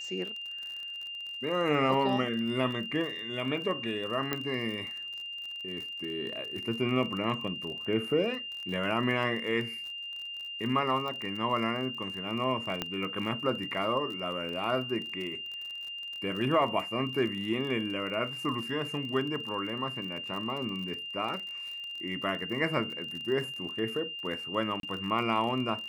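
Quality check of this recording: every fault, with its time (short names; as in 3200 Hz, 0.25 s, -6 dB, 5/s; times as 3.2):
crackle 43/s -37 dBFS
tone 2800 Hz -37 dBFS
4.33 pop -15 dBFS
11.08 pop
12.82 pop -16 dBFS
24.8–24.83 gap 32 ms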